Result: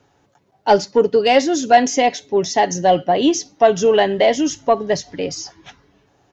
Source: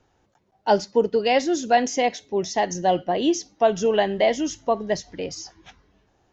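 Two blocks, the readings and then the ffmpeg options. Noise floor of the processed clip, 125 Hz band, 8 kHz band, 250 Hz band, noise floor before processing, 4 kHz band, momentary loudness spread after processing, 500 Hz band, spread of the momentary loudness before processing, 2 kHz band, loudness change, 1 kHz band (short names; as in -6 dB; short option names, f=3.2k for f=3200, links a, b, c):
-61 dBFS, +5.5 dB, n/a, +5.5 dB, -66 dBFS, +6.5 dB, 11 LU, +6.0 dB, 11 LU, +5.5 dB, +6.0 dB, +6.5 dB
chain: -af "highpass=70,acontrast=58,aecho=1:1:7.1:0.32"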